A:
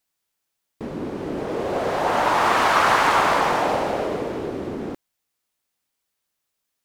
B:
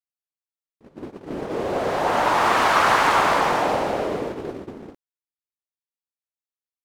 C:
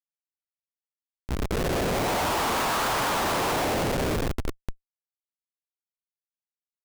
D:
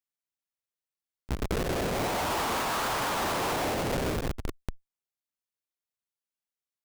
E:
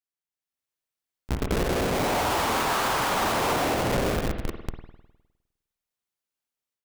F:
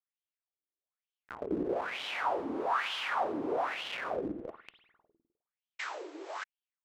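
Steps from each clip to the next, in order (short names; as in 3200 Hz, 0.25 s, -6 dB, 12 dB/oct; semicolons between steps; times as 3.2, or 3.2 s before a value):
gate -27 dBFS, range -24 dB
low shelf 65 Hz -7.5 dB; Schmitt trigger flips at -24 dBFS; gain -1.5 dB
one diode to ground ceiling -36 dBFS
AGC gain up to 9 dB; spring tank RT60 1 s, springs 51 ms, chirp 50 ms, DRR 6 dB; gain -5.5 dB
painted sound noise, 5.79–6.44, 290–8000 Hz -28 dBFS; wah 1.1 Hz 290–3200 Hz, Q 5; gain +2.5 dB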